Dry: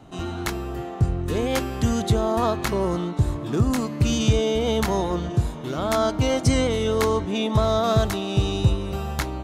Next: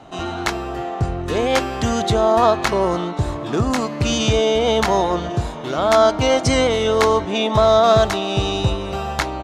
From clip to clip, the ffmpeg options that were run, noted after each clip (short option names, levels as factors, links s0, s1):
-af "firequalizer=gain_entry='entry(120,0);entry(680,11);entry(1000,9);entry(5600,7);entry(13000,-5)':delay=0.05:min_phase=1,volume=0.891"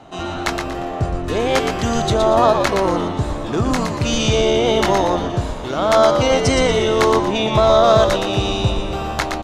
-filter_complex "[0:a]asplit=5[s0][s1][s2][s3][s4];[s1]adelay=118,afreqshift=-82,volume=0.531[s5];[s2]adelay=236,afreqshift=-164,volume=0.191[s6];[s3]adelay=354,afreqshift=-246,volume=0.0692[s7];[s4]adelay=472,afreqshift=-328,volume=0.0248[s8];[s0][s5][s6][s7][s8]amix=inputs=5:normalize=0"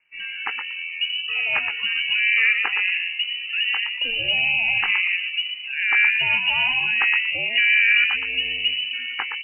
-af "afftdn=nr=19:nf=-24,lowpass=f=2600:t=q:w=0.5098,lowpass=f=2600:t=q:w=0.6013,lowpass=f=2600:t=q:w=0.9,lowpass=f=2600:t=q:w=2.563,afreqshift=-3000,volume=0.562"